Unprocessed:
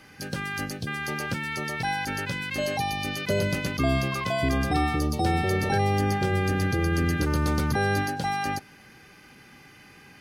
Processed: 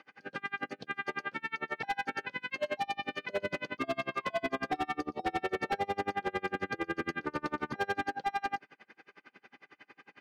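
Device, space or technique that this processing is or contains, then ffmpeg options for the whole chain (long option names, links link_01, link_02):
helicopter radio: -af "highpass=360,lowpass=2600,aeval=exprs='val(0)*pow(10,-34*(0.5-0.5*cos(2*PI*11*n/s))/20)':channel_layout=same,asoftclip=type=hard:threshold=-28dB,volume=2.5dB"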